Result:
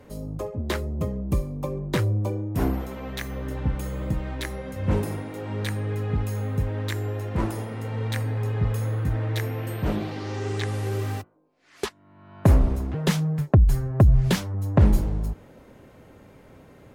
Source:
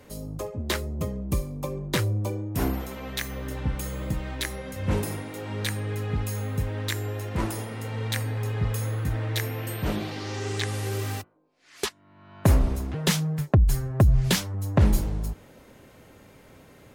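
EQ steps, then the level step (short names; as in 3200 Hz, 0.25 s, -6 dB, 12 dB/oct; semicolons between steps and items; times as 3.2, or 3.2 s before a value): high shelf 2100 Hz -9.5 dB; +2.5 dB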